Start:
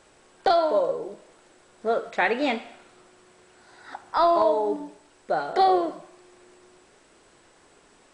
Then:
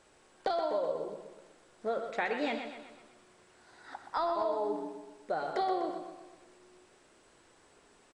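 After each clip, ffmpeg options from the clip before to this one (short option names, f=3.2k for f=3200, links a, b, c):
-filter_complex "[0:a]acompressor=threshold=-22dB:ratio=6,asplit=2[a][b];[b]aecho=0:1:124|248|372|496|620|744:0.376|0.188|0.094|0.047|0.0235|0.0117[c];[a][c]amix=inputs=2:normalize=0,volume=-6.5dB"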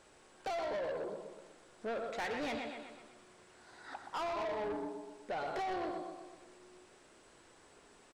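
-af "asoftclip=type=tanh:threshold=-35.5dB,volume=1dB"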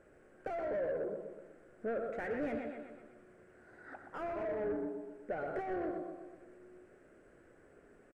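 -af "firequalizer=gain_entry='entry(580,0);entry(930,-15);entry(1500,-2);entry(3700,-26);entry(8500,-17)':delay=0.05:min_phase=1,volume=3dB"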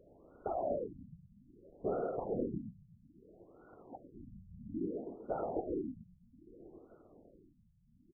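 -af "afftfilt=real='hypot(re,im)*cos(2*PI*random(0))':imag='hypot(re,im)*sin(2*PI*random(1))':win_size=512:overlap=0.75,volume=34dB,asoftclip=hard,volume=-34dB,afftfilt=real='re*lt(b*sr/1024,200*pow(1500/200,0.5+0.5*sin(2*PI*0.61*pts/sr)))':imag='im*lt(b*sr/1024,200*pow(1500/200,0.5+0.5*sin(2*PI*0.61*pts/sr)))':win_size=1024:overlap=0.75,volume=8dB"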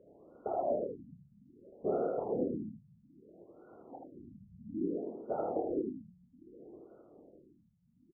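-filter_complex "[0:a]bandpass=f=420:t=q:w=0.53:csg=0,asplit=2[a][b];[b]aecho=0:1:28|78:0.501|0.596[c];[a][c]amix=inputs=2:normalize=0,volume=1.5dB"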